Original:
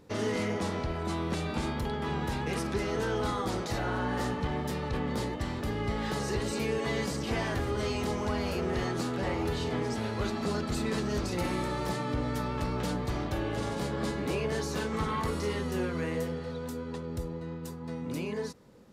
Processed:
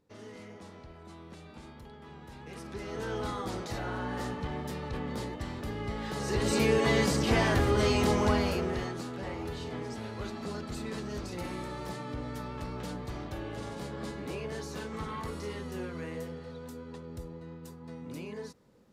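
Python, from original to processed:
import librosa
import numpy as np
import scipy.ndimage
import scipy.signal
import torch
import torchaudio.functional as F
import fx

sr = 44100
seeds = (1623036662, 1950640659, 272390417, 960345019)

y = fx.gain(x, sr, db=fx.line((2.25, -16.5), (3.13, -4.0), (6.12, -4.0), (6.54, 5.5), (8.3, 5.5), (9.01, -6.5)))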